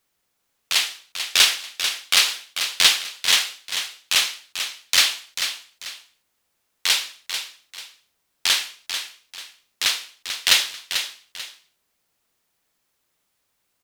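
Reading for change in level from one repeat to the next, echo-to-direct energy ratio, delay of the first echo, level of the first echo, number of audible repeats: −10.0 dB, −8.0 dB, 441 ms, −8.5 dB, 2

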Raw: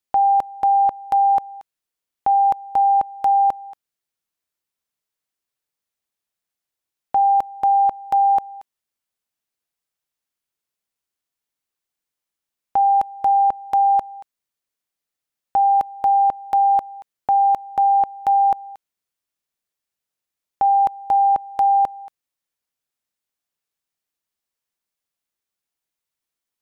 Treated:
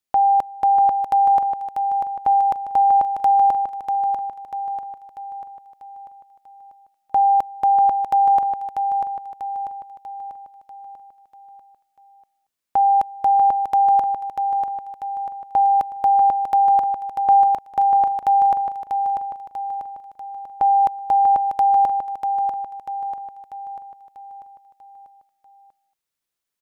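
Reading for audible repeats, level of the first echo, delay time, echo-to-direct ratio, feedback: 5, −6.0 dB, 642 ms, −5.0 dB, 50%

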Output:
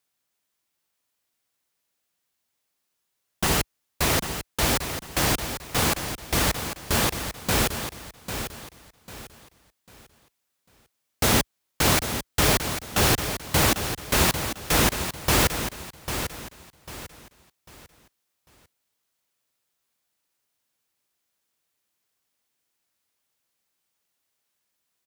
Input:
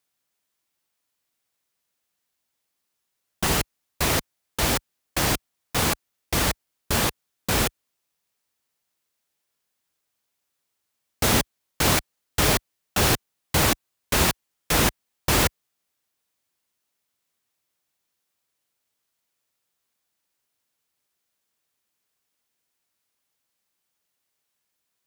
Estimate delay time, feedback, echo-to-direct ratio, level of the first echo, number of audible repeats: 797 ms, 32%, −8.5 dB, −9.0 dB, 3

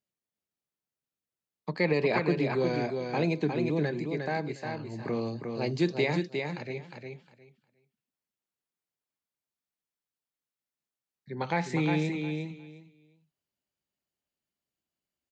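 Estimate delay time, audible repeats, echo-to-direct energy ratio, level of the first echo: 357 ms, 3, −5.0 dB, −5.0 dB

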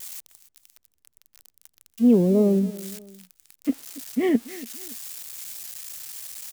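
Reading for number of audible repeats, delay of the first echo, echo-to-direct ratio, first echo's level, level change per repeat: 2, 284 ms, −18.0 dB, −18.5 dB, −8.0 dB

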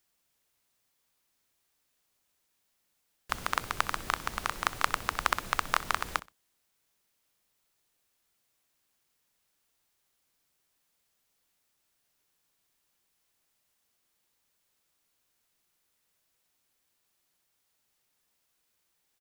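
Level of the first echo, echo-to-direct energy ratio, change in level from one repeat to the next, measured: −19.0 dB, −19.0 dB, −12.5 dB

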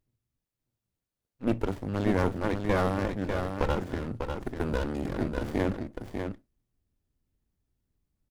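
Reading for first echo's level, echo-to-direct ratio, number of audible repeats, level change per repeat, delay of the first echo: −6.0 dB, −6.0 dB, 1, repeats not evenly spaced, 596 ms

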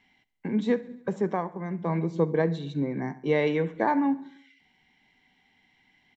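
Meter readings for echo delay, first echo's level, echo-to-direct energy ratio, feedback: 69 ms, −20.5 dB, −18.5 dB, 60%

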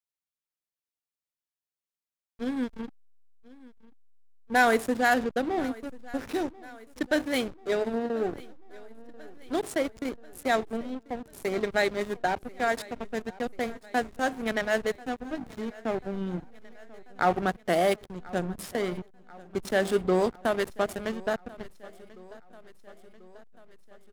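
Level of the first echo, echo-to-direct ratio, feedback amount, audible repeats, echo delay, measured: −21.5 dB, −19.5 dB, 60%, 4, 1,039 ms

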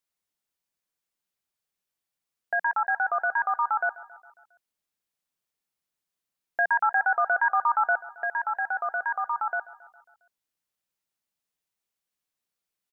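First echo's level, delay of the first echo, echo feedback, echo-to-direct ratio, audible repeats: −19.5 dB, 136 ms, 60%, −17.5 dB, 4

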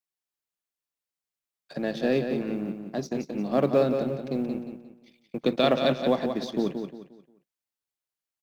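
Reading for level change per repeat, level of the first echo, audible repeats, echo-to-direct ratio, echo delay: −9.5 dB, −7.0 dB, 3, −6.5 dB, 177 ms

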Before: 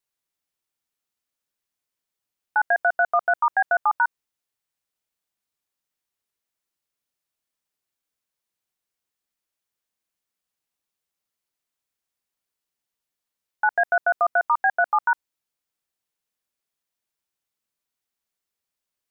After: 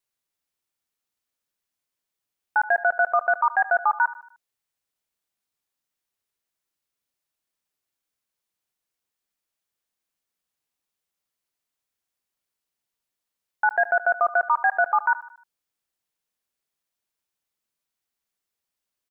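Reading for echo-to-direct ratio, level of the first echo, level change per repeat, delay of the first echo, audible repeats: −16.0 dB, −17.0 dB, −6.5 dB, 76 ms, 3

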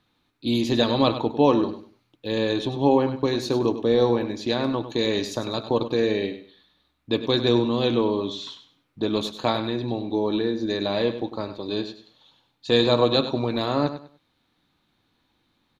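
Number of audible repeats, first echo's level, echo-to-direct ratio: 2, −11.5 dB, −11.0 dB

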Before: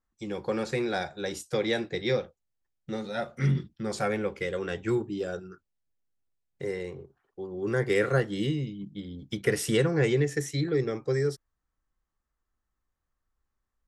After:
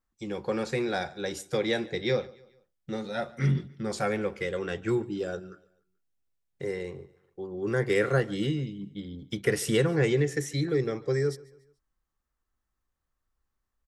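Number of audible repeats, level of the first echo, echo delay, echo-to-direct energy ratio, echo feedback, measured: 2, −22.5 dB, 144 ms, −21.5 dB, 43%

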